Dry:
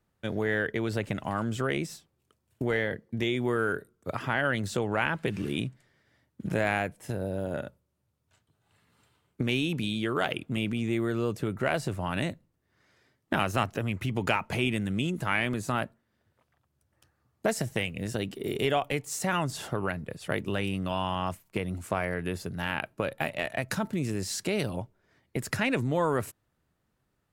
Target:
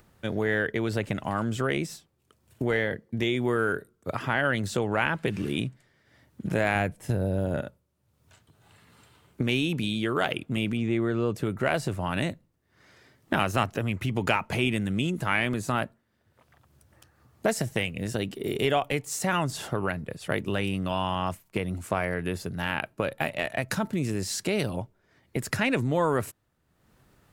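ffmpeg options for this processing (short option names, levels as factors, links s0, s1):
-filter_complex "[0:a]asettb=1/sr,asplit=3[s0][s1][s2];[s0]atrim=end=6.754[s3];[s1]atrim=start=6.75:end=7.61,asetpts=PTS-STARTPTS,afade=t=in:d=0.004:c=qsin,afade=t=out:st=0.856:d=0.004:c=qsin,lowshelf=f=160:g=9[s4];[s2]atrim=start=7.606[s5];[s3][s4]acrossfade=d=0.004:c1=hsin:c2=qsin[s6];[s6][s5]acrossfade=d=0.004:c1=qsin:c2=hsin,acompressor=mode=upward:threshold=0.00316:ratio=2.5,asettb=1/sr,asplit=3[s7][s8][s9];[s7]atrim=end=10.774[s10];[s8]atrim=start=10.77:end=11.35,asetpts=PTS-STARTPTS,afade=t=in:d=0.004:c=qsin,afade=t=out:st=0.576:d=0.004:c=qsin,aemphasis=mode=reproduction:type=50fm[s11];[s9]atrim=start=11.346[s12];[s10][s11]acrossfade=d=0.004:c1=hsin:c2=qsin[s13];[s13][s12]acrossfade=d=0.004:c1=qsin:c2=hsin,volume=1.26"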